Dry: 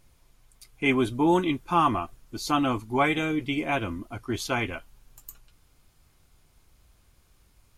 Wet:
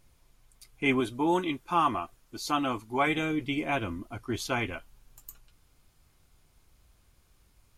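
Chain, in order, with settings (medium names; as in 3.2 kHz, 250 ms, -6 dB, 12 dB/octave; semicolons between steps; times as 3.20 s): 1.00–3.07 s: bass shelf 230 Hz -8 dB; trim -2.5 dB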